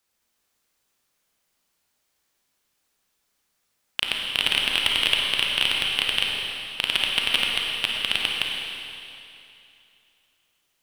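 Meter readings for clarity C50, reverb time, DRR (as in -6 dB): -0.5 dB, 2.7 s, -1.5 dB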